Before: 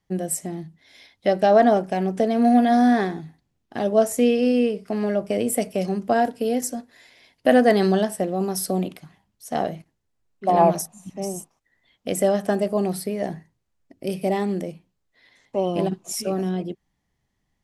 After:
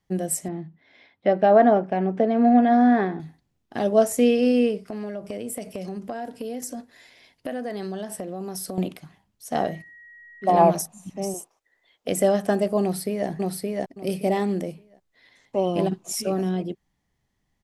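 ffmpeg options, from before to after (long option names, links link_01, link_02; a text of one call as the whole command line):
ffmpeg -i in.wav -filter_complex "[0:a]asettb=1/sr,asplit=3[link_01][link_02][link_03];[link_01]atrim=end=0.484[link_04];[link_02]atrim=start=0.48:end=3.2,asetpts=PTS-STARTPTS,afade=type=in:duration=0.004:curve=qsin,afade=type=out:start_time=2.716:duration=0.004:curve=qsin,highpass=110,lowpass=2200[link_05];[link_03]atrim=start=3.196[link_06];[link_04][link_05]acrossfade=duration=0.004:curve1=hsin:curve2=qsin[link_07];[link_07][link_06]acrossfade=duration=0.004:curve1=qsin:curve2=hsin,asettb=1/sr,asplit=3[link_08][link_09][link_10];[link_08]atrim=end=4.854[link_11];[link_09]atrim=start=4.85:end=8.78,asetpts=PTS-STARTPTS,afade=type=in:duration=0.004:curve=qsin,afade=type=out:start_time=3.926:duration=0.004:curve=qsin,acompressor=threshold=-29dB:ratio=5:attack=3.2:release=140:knee=1:detection=peak[link_12];[link_10]atrim=start=8.776[link_13];[link_11][link_12]acrossfade=duration=0.004:curve1=hsin:curve2=qsin[link_14];[link_14][link_13]acrossfade=duration=0.004:curve1=qsin:curve2=hsin,asettb=1/sr,asplit=3[link_15][link_16][link_17];[link_15]atrim=end=9.534[link_18];[link_16]atrim=start=9.53:end=10.55,asetpts=PTS-STARTPTS,afade=type=in:duration=0.004:curve=qsin,afade=type=out:start_time=1.016:duration=0.004:curve=qsin,aeval=exprs='val(0)+0.00562*sin(2*PI*1900*n/s)':channel_layout=same[link_19];[link_17]atrim=start=10.546[link_20];[link_18][link_19]acrossfade=duration=0.004:curve1=hsin:curve2=qsin[link_21];[link_21][link_20]acrossfade=duration=0.004:curve1=qsin:curve2=hsin,asettb=1/sr,asplit=3[link_22][link_23][link_24];[link_22]atrim=end=11.344[link_25];[link_23]atrim=start=11.34:end=12.08,asetpts=PTS-STARTPTS,afade=type=in:duration=0.004:curve=qsin,afade=type=out:start_time=0.736:duration=0.004:curve=qsin,lowshelf=frequency=290:width_type=q:width=1.5:gain=-11.5[link_26];[link_24]atrim=start=12.076[link_27];[link_25][link_26]acrossfade=duration=0.004:curve1=hsin:curve2=qsin[link_28];[link_28][link_27]acrossfade=duration=0.004:curve1=qsin:curve2=hsin,asplit=2[link_29][link_30];[link_30]afade=type=in:start_time=12.82:duration=0.01,afade=type=out:start_time=13.28:duration=0.01,aecho=0:1:570|1140|1710:0.841395|0.168279|0.0336558[link_31];[link_29][link_31]amix=inputs=2:normalize=0" out.wav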